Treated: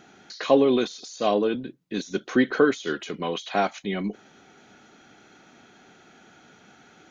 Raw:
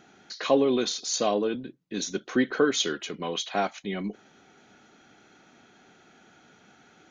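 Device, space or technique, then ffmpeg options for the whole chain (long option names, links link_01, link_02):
de-esser from a sidechain: -filter_complex "[0:a]asplit=2[link_01][link_02];[link_02]highpass=frequency=4600:width=0.5412,highpass=frequency=4600:width=1.3066,apad=whole_len=313423[link_03];[link_01][link_03]sidechaincompress=threshold=-42dB:ratio=20:attack=1.6:release=57,volume=3.5dB"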